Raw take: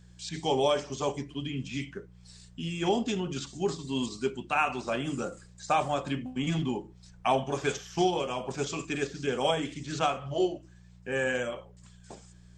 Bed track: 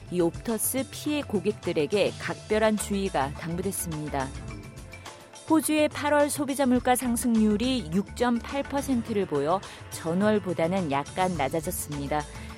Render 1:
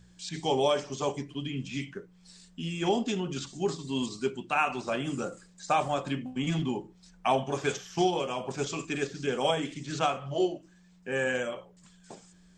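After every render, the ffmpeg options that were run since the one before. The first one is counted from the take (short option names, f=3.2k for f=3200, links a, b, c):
-af "bandreject=f=60:t=h:w=4,bandreject=f=120:t=h:w=4"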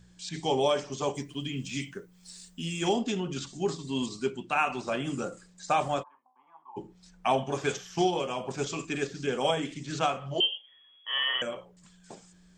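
-filter_complex "[0:a]asettb=1/sr,asplit=3[a][b][c];[a]atrim=end=1.154[d];[b]atrim=start=1.15:end=2.93,asetpts=PTS-STARTPTS,afade=t=in:d=0.004:c=qsin,afade=t=out:st=1.776:d=0.004:c=qsin,aemphasis=mode=production:type=50fm[e];[c]atrim=start=2.926[f];[d][e]acrossfade=d=0.004:c1=hsin:c2=qsin[g];[g][f]acrossfade=d=0.004:c1=qsin:c2=hsin,asplit=3[h][i][j];[h]afade=t=out:st=6.02:d=0.02[k];[i]asuperpass=centerf=970:order=4:qfactor=4,afade=t=in:st=6.02:d=0.02,afade=t=out:st=6.76:d=0.02[l];[j]afade=t=in:st=6.76:d=0.02[m];[k][l][m]amix=inputs=3:normalize=0,asettb=1/sr,asplit=3[n][o][p];[n]atrim=end=10.404[q];[o]atrim=start=10.4:end=11.42,asetpts=PTS-STARTPTS,afade=t=in:d=0.004:c=qsin,afade=t=out:st=1.016:d=0.004:c=qsin,lowpass=f=3k:t=q:w=0.5098,lowpass=f=3k:t=q:w=0.6013,lowpass=f=3k:t=q:w=0.9,lowpass=f=3k:t=q:w=2.563,afreqshift=-3500[r];[p]atrim=start=11.416[s];[q][r]acrossfade=d=0.004:c1=hsin:c2=qsin[t];[t][s]acrossfade=d=0.004:c1=qsin:c2=hsin"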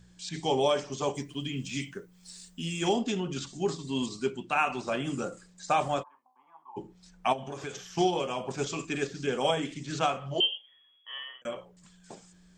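-filter_complex "[0:a]asplit=3[a][b][c];[a]afade=t=out:st=7.32:d=0.02[d];[b]acompressor=threshold=-35dB:ratio=4:attack=3.2:release=140:knee=1:detection=peak,afade=t=in:st=7.32:d=0.02,afade=t=out:st=7.84:d=0.02[e];[c]afade=t=in:st=7.84:d=0.02[f];[d][e][f]amix=inputs=3:normalize=0,asplit=2[g][h];[g]atrim=end=11.45,asetpts=PTS-STARTPTS,afade=t=out:st=10.5:d=0.95[i];[h]atrim=start=11.45,asetpts=PTS-STARTPTS,afade=t=in:d=0.004:c=hsin[j];[i][j]concat=n=2:v=0:a=1"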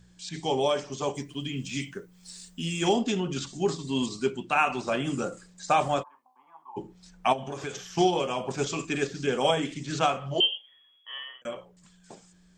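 -af "dynaudnorm=f=270:g=13:m=3dB"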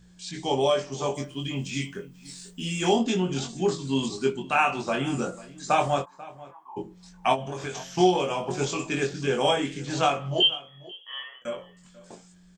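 -filter_complex "[0:a]asplit=2[a][b];[b]adelay=22,volume=-3.5dB[c];[a][c]amix=inputs=2:normalize=0,asplit=2[d][e];[e]adelay=489.8,volume=-19dB,highshelf=f=4k:g=-11[f];[d][f]amix=inputs=2:normalize=0"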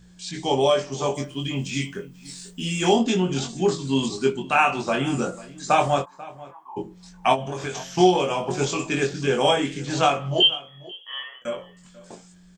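-af "volume=3.5dB"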